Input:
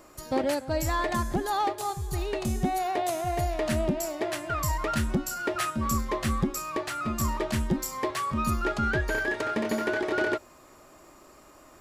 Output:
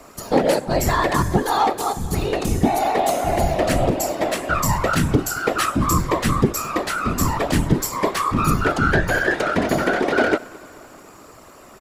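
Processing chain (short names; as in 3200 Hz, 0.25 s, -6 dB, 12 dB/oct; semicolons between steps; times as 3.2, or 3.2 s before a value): whisperiser; feedback echo 0.216 s, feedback 59%, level -23 dB; gain +8.5 dB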